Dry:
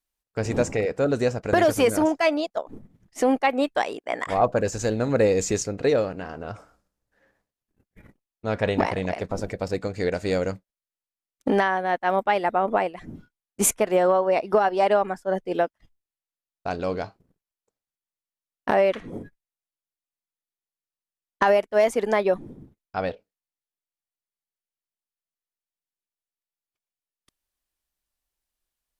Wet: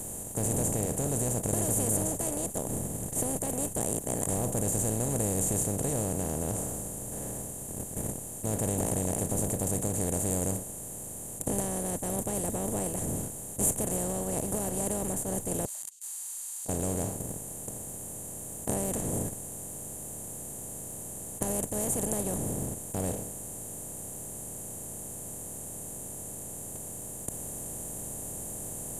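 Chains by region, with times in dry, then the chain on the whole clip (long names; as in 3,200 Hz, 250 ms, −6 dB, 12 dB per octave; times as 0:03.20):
0:15.65–0:16.69: spike at every zero crossing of −27.5 dBFS + flat-topped band-pass 4,600 Hz, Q 7.9
whole clip: compressor on every frequency bin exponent 0.2; drawn EQ curve 150 Hz 0 dB, 260 Hz −11 dB, 2,300 Hz −28 dB, 3,300 Hz −17 dB, 5,100 Hz −20 dB, 7,400 Hz −1 dB; level −6.5 dB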